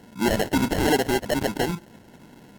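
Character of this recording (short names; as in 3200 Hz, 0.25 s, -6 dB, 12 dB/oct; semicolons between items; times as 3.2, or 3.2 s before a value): aliases and images of a low sample rate 1200 Hz, jitter 0%; AAC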